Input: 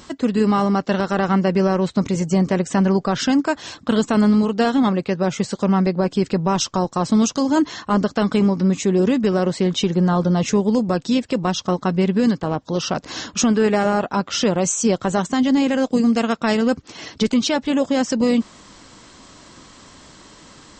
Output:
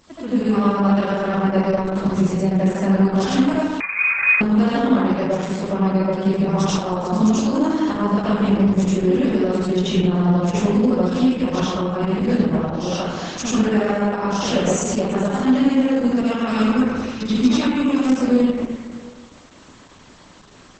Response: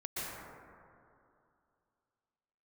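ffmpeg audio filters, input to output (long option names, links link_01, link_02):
-filter_complex "[0:a]asettb=1/sr,asplit=3[link_01][link_02][link_03];[link_01]atrim=end=16.414[link_04];[link_02]atrim=start=16.41:end=18.09,asetpts=PTS-STARTPTS,afade=type=in:duration=0.004:curve=qsin,afade=type=out:start_time=1.676:duration=0.004:curve=qsin,aecho=1:1:0.8:0.62,atrim=end_sample=74088[link_05];[link_03]atrim=start=18.086[link_06];[link_04][link_05]acrossfade=duration=0.004:curve1=hsin:curve2=qsin[link_07];[link_07][link_06]acrossfade=duration=0.004:curve1=qsin:curve2=hsin[link_08];[1:a]atrim=start_sample=2205,asetrate=70560,aresample=44100[link_09];[link_08][link_09]afir=irnorm=-1:irlink=0,asettb=1/sr,asplit=3[link_10][link_11][link_12];[link_10]atrim=end=3.804[link_13];[link_11]atrim=start=3.8:end=4.41,asetpts=PTS-STARTPTS,afade=type=in:duration=0.004:curve=qsin,afade=type=out:start_time=0.606:duration=0.004:curve=qsin,lowpass=frequency=2300:width_type=q:width=0.5098,lowpass=frequency=2300:width_type=q:width=0.6013,lowpass=frequency=2300:width_type=q:width=0.9,lowpass=frequency=2300:width_type=q:width=2.563,afreqshift=-2700[link_14];[link_12]atrim=start=4.406[link_15];[link_13][link_14]acrossfade=duration=0.004:curve1=hsin:curve2=qsin[link_16];[link_16][link_15]acrossfade=duration=0.004:curve1=qsin:curve2=hsin" -ar 48000 -c:a libopus -b:a 10k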